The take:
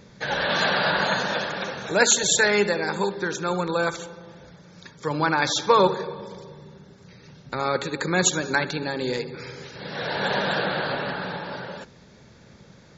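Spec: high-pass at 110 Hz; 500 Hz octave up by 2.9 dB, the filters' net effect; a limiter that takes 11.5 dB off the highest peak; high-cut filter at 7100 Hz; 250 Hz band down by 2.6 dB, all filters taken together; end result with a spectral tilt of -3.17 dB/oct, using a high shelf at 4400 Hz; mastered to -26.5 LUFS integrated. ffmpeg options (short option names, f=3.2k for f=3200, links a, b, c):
-af "highpass=110,lowpass=7.1k,equalizer=f=250:t=o:g=-6,equalizer=f=500:t=o:g=5,highshelf=f=4.4k:g=-6,volume=-0.5dB,alimiter=limit=-14.5dB:level=0:latency=1"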